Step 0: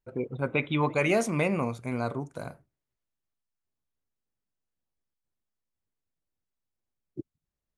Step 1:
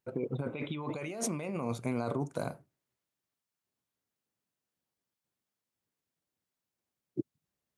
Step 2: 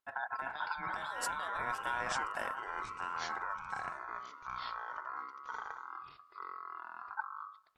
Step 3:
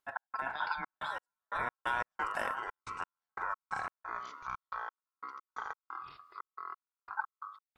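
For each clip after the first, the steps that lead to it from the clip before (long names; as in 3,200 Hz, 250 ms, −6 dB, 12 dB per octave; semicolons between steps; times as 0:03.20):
compressor whose output falls as the input rises −33 dBFS, ratio −1; high-pass filter 120 Hz 12 dB per octave; dynamic equaliser 1,800 Hz, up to −5 dB, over −52 dBFS, Q 1.4; level −1 dB
tape wow and flutter 27 cents; delay with pitch and tempo change per echo 377 ms, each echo −6 semitones, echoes 3; ring modulation 1,200 Hz; level −1.5 dB
gate pattern "x.xxx.x..x." 89 BPM −60 dB; level +3 dB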